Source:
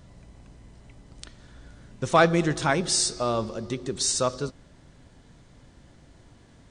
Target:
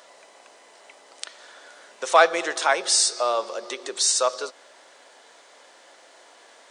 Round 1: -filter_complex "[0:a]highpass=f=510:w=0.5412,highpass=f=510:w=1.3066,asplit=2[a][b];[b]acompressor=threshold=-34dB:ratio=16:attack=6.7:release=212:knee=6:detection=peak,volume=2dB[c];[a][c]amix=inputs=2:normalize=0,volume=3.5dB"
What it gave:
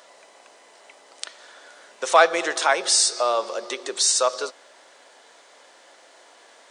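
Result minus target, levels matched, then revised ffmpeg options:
compressor: peak gain reduction -8 dB
-filter_complex "[0:a]highpass=f=510:w=0.5412,highpass=f=510:w=1.3066,asplit=2[a][b];[b]acompressor=threshold=-42.5dB:ratio=16:attack=6.7:release=212:knee=6:detection=peak,volume=2dB[c];[a][c]amix=inputs=2:normalize=0,volume=3.5dB"

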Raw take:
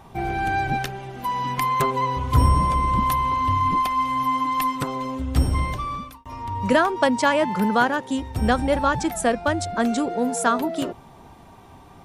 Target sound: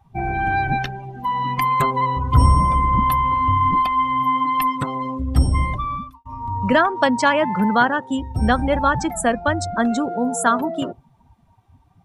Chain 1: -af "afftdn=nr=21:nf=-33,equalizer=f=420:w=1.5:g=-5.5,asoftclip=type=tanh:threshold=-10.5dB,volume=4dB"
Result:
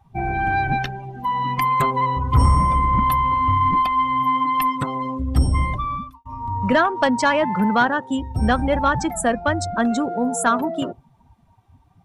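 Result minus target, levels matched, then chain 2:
soft clip: distortion +17 dB
-af "afftdn=nr=21:nf=-33,equalizer=f=420:w=1.5:g=-5.5,asoftclip=type=tanh:threshold=-0.5dB,volume=4dB"

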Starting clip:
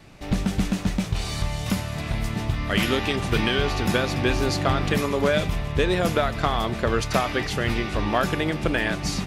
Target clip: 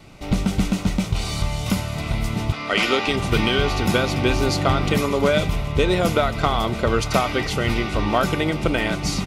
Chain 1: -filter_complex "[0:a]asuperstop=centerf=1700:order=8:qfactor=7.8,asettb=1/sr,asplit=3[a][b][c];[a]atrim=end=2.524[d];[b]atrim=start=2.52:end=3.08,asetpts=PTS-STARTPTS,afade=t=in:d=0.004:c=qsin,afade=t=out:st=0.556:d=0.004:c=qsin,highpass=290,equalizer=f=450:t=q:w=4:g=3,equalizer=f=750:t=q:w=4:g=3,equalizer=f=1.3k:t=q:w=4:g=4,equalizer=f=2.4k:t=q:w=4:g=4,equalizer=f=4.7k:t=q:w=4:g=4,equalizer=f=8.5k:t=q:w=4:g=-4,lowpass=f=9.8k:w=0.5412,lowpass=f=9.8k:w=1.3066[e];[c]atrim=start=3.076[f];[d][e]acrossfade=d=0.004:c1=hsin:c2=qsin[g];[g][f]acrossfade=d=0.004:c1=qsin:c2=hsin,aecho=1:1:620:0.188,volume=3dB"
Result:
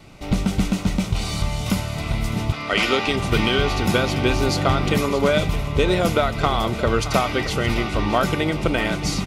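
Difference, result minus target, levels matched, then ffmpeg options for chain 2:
echo-to-direct +7.5 dB
-filter_complex "[0:a]asuperstop=centerf=1700:order=8:qfactor=7.8,asettb=1/sr,asplit=3[a][b][c];[a]atrim=end=2.524[d];[b]atrim=start=2.52:end=3.08,asetpts=PTS-STARTPTS,afade=t=in:d=0.004:c=qsin,afade=t=out:st=0.556:d=0.004:c=qsin,highpass=290,equalizer=f=450:t=q:w=4:g=3,equalizer=f=750:t=q:w=4:g=3,equalizer=f=1.3k:t=q:w=4:g=4,equalizer=f=2.4k:t=q:w=4:g=4,equalizer=f=4.7k:t=q:w=4:g=4,equalizer=f=8.5k:t=q:w=4:g=-4,lowpass=f=9.8k:w=0.5412,lowpass=f=9.8k:w=1.3066[e];[c]atrim=start=3.076[f];[d][e]acrossfade=d=0.004:c1=hsin:c2=qsin[g];[g][f]acrossfade=d=0.004:c1=qsin:c2=hsin,aecho=1:1:620:0.0794,volume=3dB"

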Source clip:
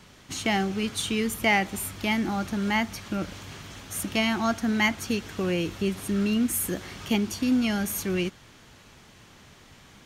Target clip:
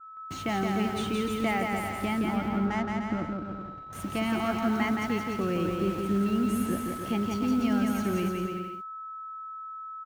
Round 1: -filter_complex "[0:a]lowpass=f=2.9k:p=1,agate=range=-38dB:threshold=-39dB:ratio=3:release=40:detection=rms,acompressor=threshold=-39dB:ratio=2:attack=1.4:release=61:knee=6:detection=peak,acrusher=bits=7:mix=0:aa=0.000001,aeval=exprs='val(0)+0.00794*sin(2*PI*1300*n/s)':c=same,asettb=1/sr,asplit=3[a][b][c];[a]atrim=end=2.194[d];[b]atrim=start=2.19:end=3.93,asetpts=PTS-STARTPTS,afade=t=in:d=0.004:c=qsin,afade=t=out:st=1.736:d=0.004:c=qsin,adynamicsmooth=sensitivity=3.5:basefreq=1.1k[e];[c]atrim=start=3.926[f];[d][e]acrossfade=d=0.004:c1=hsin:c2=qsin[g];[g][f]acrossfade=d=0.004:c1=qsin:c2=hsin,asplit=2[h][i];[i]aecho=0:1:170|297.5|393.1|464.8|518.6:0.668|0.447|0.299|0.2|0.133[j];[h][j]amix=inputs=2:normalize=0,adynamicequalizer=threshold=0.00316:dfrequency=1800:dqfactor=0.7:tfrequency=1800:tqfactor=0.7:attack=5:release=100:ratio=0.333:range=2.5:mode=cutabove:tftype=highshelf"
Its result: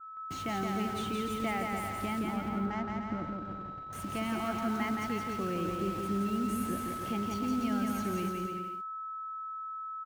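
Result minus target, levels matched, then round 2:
compressor: peak gain reduction +6 dB
-filter_complex "[0:a]lowpass=f=2.9k:p=1,agate=range=-38dB:threshold=-39dB:ratio=3:release=40:detection=rms,acompressor=threshold=-27dB:ratio=2:attack=1.4:release=61:knee=6:detection=peak,acrusher=bits=7:mix=0:aa=0.000001,aeval=exprs='val(0)+0.00794*sin(2*PI*1300*n/s)':c=same,asettb=1/sr,asplit=3[a][b][c];[a]atrim=end=2.194[d];[b]atrim=start=2.19:end=3.93,asetpts=PTS-STARTPTS,afade=t=in:d=0.004:c=qsin,afade=t=out:st=1.736:d=0.004:c=qsin,adynamicsmooth=sensitivity=3.5:basefreq=1.1k[e];[c]atrim=start=3.926[f];[d][e]acrossfade=d=0.004:c1=hsin:c2=qsin[g];[g][f]acrossfade=d=0.004:c1=qsin:c2=hsin,asplit=2[h][i];[i]aecho=0:1:170|297.5|393.1|464.8|518.6:0.668|0.447|0.299|0.2|0.133[j];[h][j]amix=inputs=2:normalize=0,adynamicequalizer=threshold=0.00316:dfrequency=1800:dqfactor=0.7:tfrequency=1800:tqfactor=0.7:attack=5:release=100:ratio=0.333:range=2.5:mode=cutabove:tftype=highshelf"

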